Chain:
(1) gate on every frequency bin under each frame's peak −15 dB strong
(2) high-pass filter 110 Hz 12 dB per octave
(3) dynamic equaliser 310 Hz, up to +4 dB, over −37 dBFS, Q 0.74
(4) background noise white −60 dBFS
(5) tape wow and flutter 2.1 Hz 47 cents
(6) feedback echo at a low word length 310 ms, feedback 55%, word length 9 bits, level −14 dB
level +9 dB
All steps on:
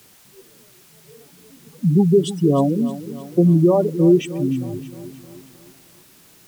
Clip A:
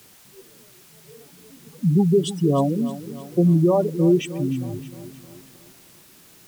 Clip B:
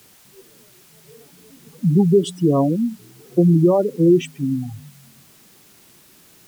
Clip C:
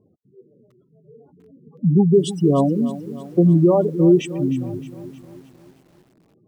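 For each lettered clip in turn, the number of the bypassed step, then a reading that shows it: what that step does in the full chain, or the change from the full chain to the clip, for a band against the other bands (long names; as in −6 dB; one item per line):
3, 500 Hz band −2.0 dB
6, change in momentary loudness spread −7 LU
4, change in momentary loudness spread −2 LU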